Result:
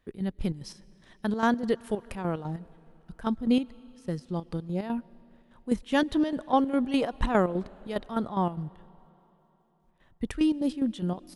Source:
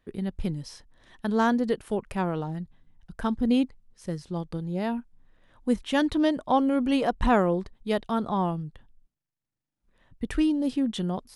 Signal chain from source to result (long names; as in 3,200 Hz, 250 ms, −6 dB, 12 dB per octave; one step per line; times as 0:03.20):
square-wave tremolo 4.9 Hz, depth 65%, duty 55%
on a send: convolution reverb RT60 3.7 s, pre-delay 80 ms, DRR 23 dB